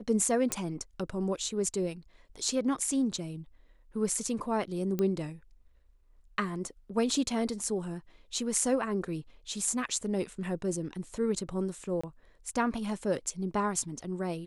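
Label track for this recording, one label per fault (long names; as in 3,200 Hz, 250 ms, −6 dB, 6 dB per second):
0.520000	0.520000	click −12 dBFS
4.990000	4.990000	click −18 dBFS
12.010000	12.040000	drop-out 25 ms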